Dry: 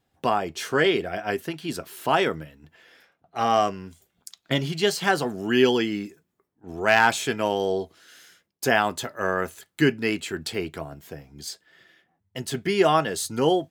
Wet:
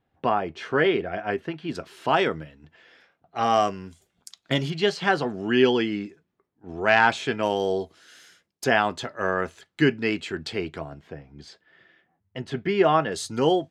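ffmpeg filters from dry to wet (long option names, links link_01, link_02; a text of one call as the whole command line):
ffmpeg -i in.wav -af "asetnsamples=nb_out_samples=441:pad=0,asendcmd='1.75 lowpass f 5100;3.43 lowpass f 9100;4.7 lowpass f 4000;7.43 lowpass f 9500;8.64 lowpass f 4900;11.01 lowpass f 2700;13.12 lowpass f 6600',lowpass=2600" out.wav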